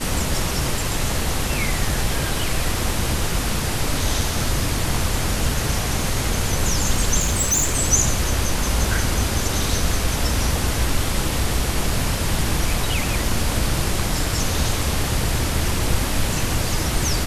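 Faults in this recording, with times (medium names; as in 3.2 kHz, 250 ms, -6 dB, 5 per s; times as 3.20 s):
7.19–7.76 s: clipped -15 dBFS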